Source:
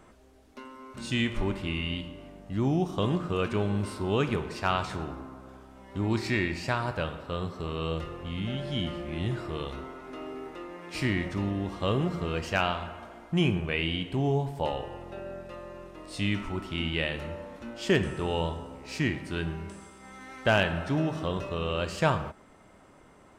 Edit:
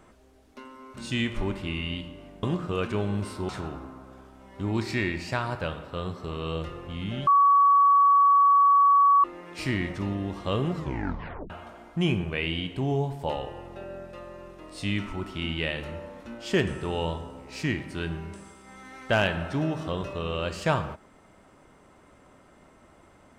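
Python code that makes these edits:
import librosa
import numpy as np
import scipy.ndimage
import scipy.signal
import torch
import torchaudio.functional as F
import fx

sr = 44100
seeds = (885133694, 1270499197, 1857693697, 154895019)

y = fx.edit(x, sr, fx.cut(start_s=2.43, length_s=0.61),
    fx.cut(start_s=4.1, length_s=0.75),
    fx.bleep(start_s=8.63, length_s=1.97, hz=1130.0, db=-15.0),
    fx.tape_stop(start_s=12.11, length_s=0.75), tone=tone)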